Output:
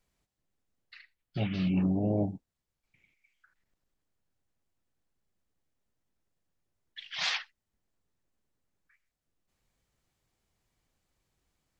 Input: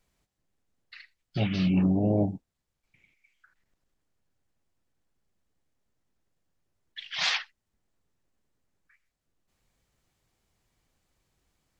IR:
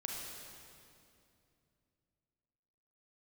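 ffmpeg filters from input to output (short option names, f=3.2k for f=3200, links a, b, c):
-filter_complex "[0:a]asettb=1/sr,asplit=3[a][b][c];[a]atrim=end=0.984[d];[b]atrim=start=0.98:end=1.67,asetpts=PTS-STARTPTS,afade=t=in:d=0.004:c=qsin,afade=t=out:st=0.686:d=0.004:c=qsin,equalizer=f=5.9k:w=1.2:g=-6.5[e];[c]atrim=start=1.666[f];[d][e]acrossfade=d=0.004:c1=hsin:c2=qsin[g];[g][f]acrossfade=d=0.004:c1=qsin:c2=hsin,volume=-4dB"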